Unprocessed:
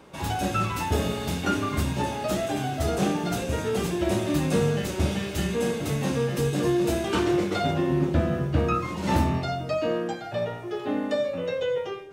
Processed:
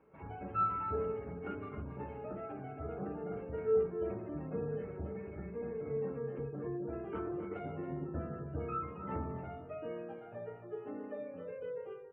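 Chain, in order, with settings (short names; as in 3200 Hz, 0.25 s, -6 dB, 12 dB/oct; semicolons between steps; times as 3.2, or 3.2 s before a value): median filter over 15 samples; spectral gate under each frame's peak -30 dB strong; steep low-pass 2900 Hz 48 dB/oct; resonator 440 Hz, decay 0.34 s, harmonics odd, mix 90%; echo 0.273 s -10 dB; gain +2 dB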